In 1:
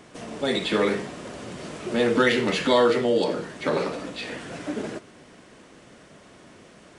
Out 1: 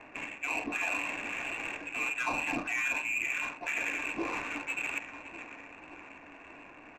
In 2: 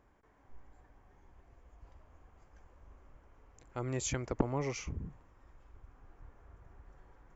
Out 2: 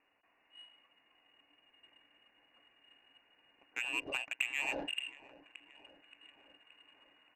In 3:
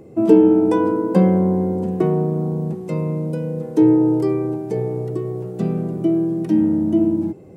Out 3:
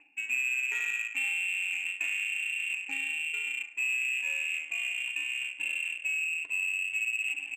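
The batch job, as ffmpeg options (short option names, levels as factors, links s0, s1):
-filter_complex "[0:a]highshelf=f=2200:g=8,aecho=1:1:574|1148|1722|2296|2870:0.112|0.0673|0.0404|0.0242|0.0145,asplit=2[s0][s1];[s1]asoftclip=type=tanh:threshold=0.126,volume=0.376[s2];[s0][s2]amix=inputs=2:normalize=0,lowpass=f=2500:t=q:w=0.5098,lowpass=f=2500:t=q:w=0.6013,lowpass=f=2500:t=q:w=0.9,lowpass=f=2500:t=q:w=2.563,afreqshift=-2900,areverse,acompressor=threshold=0.0251:ratio=5,areverse,equalizer=f=290:w=4.8:g=14,bandreject=f=1300:w=6.8,adynamicsmooth=sensitivity=4.5:basefreq=1100,volume=1.19"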